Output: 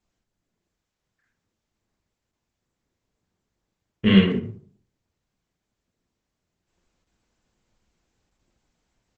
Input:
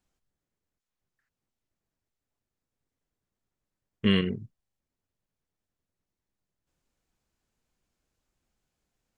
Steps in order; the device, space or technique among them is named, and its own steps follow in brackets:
speakerphone in a meeting room (convolution reverb RT60 0.45 s, pre-delay 21 ms, DRR −2 dB; far-end echo of a speakerphone 140 ms, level −20 dB; automatic gain control gain up to 5 dB; Opus 12 kbit/s 48,000 Hz)

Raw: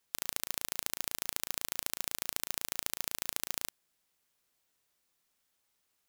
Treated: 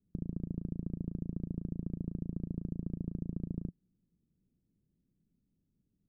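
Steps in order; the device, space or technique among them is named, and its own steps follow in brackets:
the neighbour's flat through the wall (low-pass filter 270 Hz 24 dB per octave; parametric band 170 Hz +7.5 dB 0.46 octaves)
level +17 dB

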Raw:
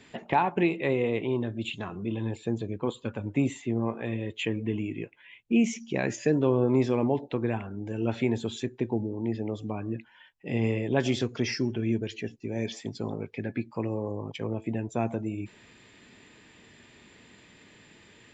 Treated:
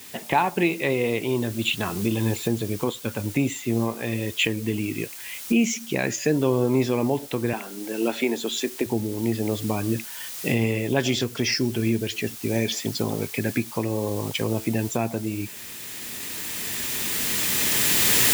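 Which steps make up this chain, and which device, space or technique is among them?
0:07.53–0:08.86: high-pass filter 240 Hz 24 dB per octave
cheap recorder with automatic gain (white noise bed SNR 24 dB; camcorder AGC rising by 7.9 dB per second)
high-shelf EQ 2,500 Hz +9 dB
level +2 dB

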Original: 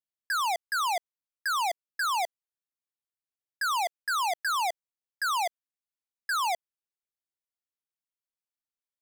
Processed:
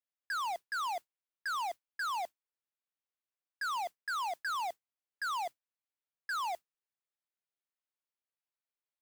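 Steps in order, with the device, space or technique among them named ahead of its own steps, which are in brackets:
carbon microphone (band-pass filter 370–3,300 Hz; soft clipping −32 dBFS, distortion −12 dB; noise that follows the level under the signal 22 dB)
level −1 dB

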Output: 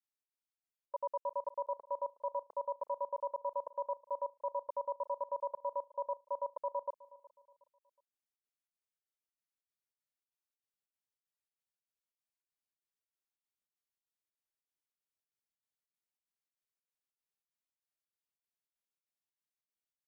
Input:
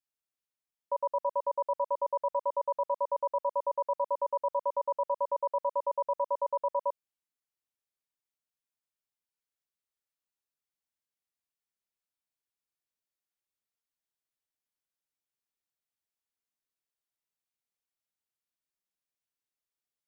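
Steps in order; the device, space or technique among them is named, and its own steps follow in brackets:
trance gate with a delay (gate pattern "xxx.xxx." 192 BPM −60 dB; repeating echo 367 ms, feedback 36%, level −20 dB)
level −6.5 dB

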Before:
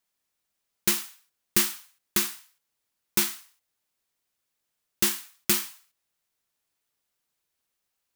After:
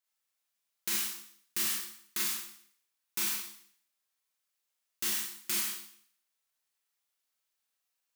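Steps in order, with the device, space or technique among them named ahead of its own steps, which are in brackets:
low-shelf EQ 490 Hz −12 dB
four-comb reverb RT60 0.6 s, combs from 29 ms, DRR −3.5 dB
soft clipper into limiter (soft clipping −6.5 dBFS, distortion −28 dB; brickwall limiter −14 dBFS, peak gain reduction 5 dB)
level −7.5 dB

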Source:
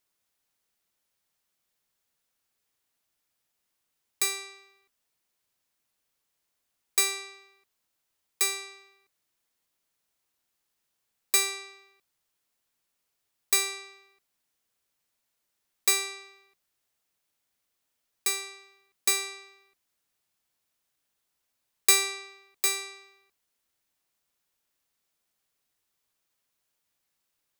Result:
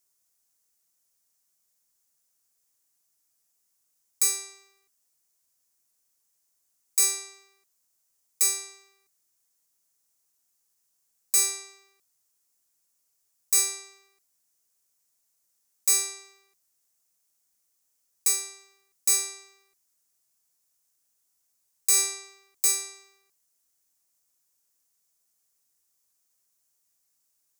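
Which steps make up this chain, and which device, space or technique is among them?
over-bright horn tweeter (high shelf with overshoot 4,700 Hz +10 dB, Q 1.5; brickwall limiter −6.5 dBFS, peak gain reduction 10.5 dB)
level −3.5 dB

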